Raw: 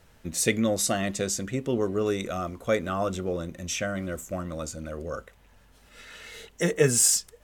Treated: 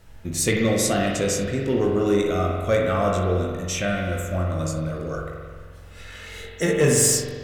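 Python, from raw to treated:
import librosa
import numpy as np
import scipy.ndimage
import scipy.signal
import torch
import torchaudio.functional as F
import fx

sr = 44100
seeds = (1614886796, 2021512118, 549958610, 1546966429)

p1 = fx.low_shelf(x, sr, hz=99.0, db=8.5)
p2 = fx.room_early_taps(p1, sr, ms=(20, 63), db=(-6.5, -17.0))
p3 = np.clip(p2, -10.0 ** (-19.5 / 20.0), 10.0 ** (-19.5 / 20.0))
p4 = p2 + (p3 * 10.0 ** (-4.5 / 20.0))
p5 = fx.rev_spring(p4, sr, rt60_s=1.7, pass_ms=(44,), chirp_ms=50, drr_db=-0.5)
y = p5 * 10.0 ** (-2.5 / 20.0)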